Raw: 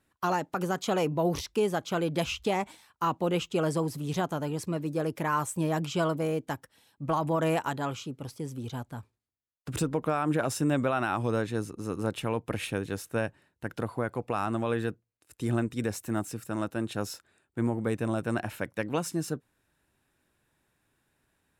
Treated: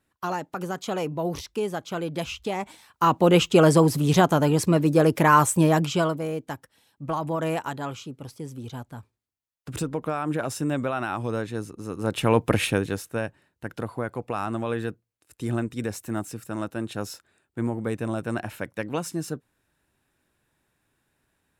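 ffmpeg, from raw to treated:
-af "volume=15,afade=t=in:st=2.57:d=0.86:silence=0.237137,afade=t=out:st=5.45:d=0.75:silence=0.266073,afade=t=in:st=11.99:d=0.42:silence=0.251189,afade=t=out:st=12.41:d=0.68:silence=0.281838"

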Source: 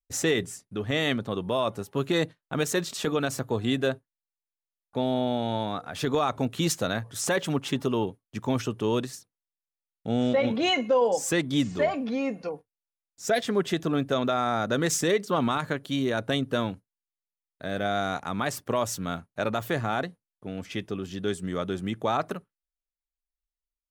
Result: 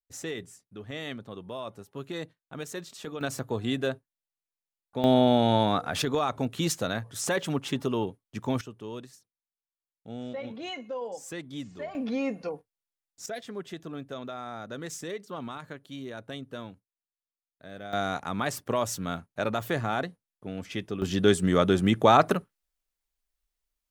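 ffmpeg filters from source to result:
-af "asetnsamples=n=441:p=0,asendcmd='3.21 volume volume -3dB;5.04 volume volume 6dB;6.02 volume volume -2dB;8.61 volume volume -13dB;11.95 volume volume -1dB;13.26 volume volume -12.5dB;17.93 volume volume -1dB;21.02 volume volume 8dB',volume=0.282"

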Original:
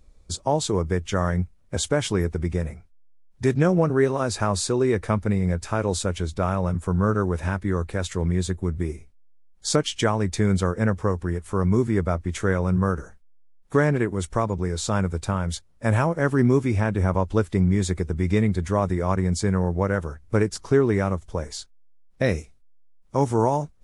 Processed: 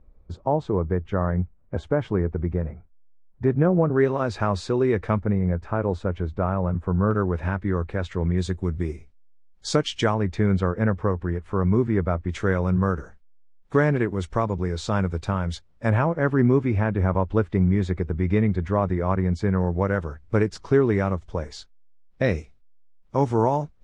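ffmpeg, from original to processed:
-af "asetnsamples=n=441:p=0,asendcmd='3.96 lowpass f 3100;5.2 lowpass f 1500;7.11 lowpass f 2600;8.38 lowpass f 5100;10.14 lowpass f 2500;12.29 lowpass f 4300;15.9 lowpass f 2500;19.59 lowpass f 4200',lowpass=1300"

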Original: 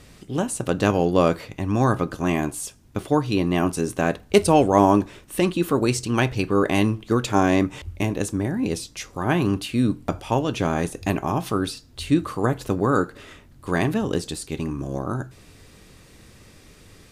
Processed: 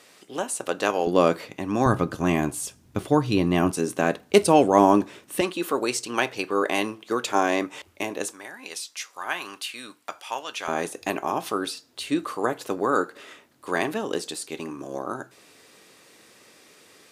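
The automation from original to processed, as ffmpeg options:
-af "asetnsamples=n=441:p=0,asendcmd='1.07 highpass f 220;1.86 highpass f 76;3.71 highpass f 200;5.41 highpass f 430;8.32 highpass f 1100;10.68 highpass f 370',highpass=470"

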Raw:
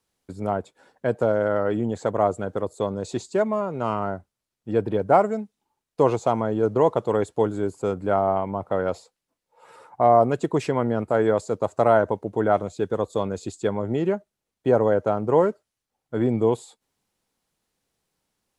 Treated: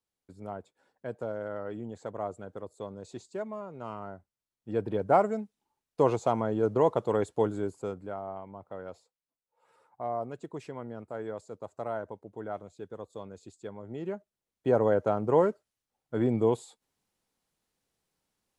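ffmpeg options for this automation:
-af "volume=2.37,afade=t=in:st=4.14:d=1.09:silence=0.354813,afade=t=out:st=7.49:d=0.66:silence=0.251189,afade=t=in:st=13.84:d=1.04:silence=0.237137"

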